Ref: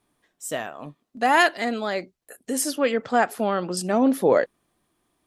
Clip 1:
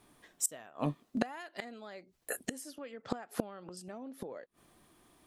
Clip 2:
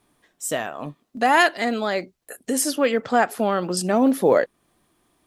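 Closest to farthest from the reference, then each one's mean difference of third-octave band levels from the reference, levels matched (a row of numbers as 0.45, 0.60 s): 2, 1; 1.5, 7.5 dB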